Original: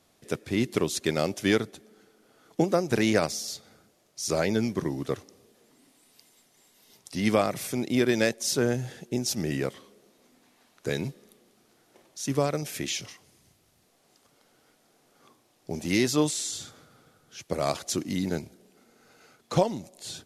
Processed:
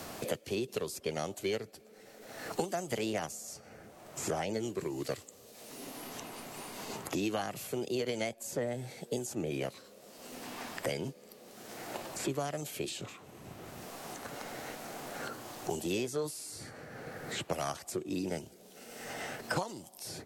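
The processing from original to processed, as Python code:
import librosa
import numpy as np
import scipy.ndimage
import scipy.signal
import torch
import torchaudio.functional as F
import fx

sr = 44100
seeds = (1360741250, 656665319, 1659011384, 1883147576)

y = fx.formant_shift(x, sr, semitones=4)
y = fx.band_squash(y, sr, depth_pct=100)
y = y * librosa.db_to_amplitude(-8.0)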